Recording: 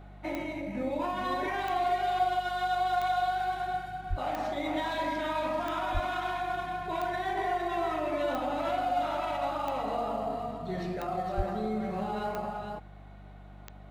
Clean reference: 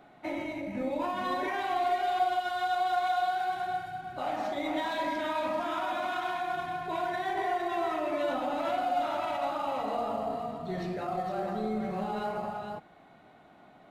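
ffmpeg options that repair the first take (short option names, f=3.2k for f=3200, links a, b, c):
-filter_complex "[0:a]adeclick=t=4,bandreject=f=49.4:t=h:w=4,bandreject=f=98.8:t=h:w=4,bandreject=f=148.2:t=h:w=4,bandreject=f=197.6:t=h:w=4,asplit=3[a][b][c];[a]afade=t=out:st=4.09:d=0.02[d];[b]highpass=f=140:w=0.5412,highpass=f=140:w=1.3066,afade=t=in:st=4.09:d=0.02,afade=t=out:st=4.21:d=0.02[e];[c]afade=t=in:st=4.21:d=0.02[f];[d][e][f]amix=inputs=3:normalize=0,asplit=3[g][h][i];[g]afade=t=out:st=5.93:d=0.02[j];[h]highpass=f=140:w=0.5412,highpass=f=140:w=1.3066,afade=t=in:st=5.93:d=0.02,afade=t=out:st=6.05:d=0.02[k];[i]afade=t=in:st=6.05:d=0.02[l];[j][k][l]amix=inputs=3:normalize=0,asplit=3[m][n][o];[m]afade=t=out:st=11.36:d=0.02[p];[n]highpass=f=140:w=0.5412,highpass=f=140:w=1.3066,afade=t=in:st=11.36:d=0.02,afade=t=out:st=11.48:d=0.02[q];[o]afade=t=in:st=11.48:d=0.02[r];[p][q][r]amix=inputs=3:normalize=0"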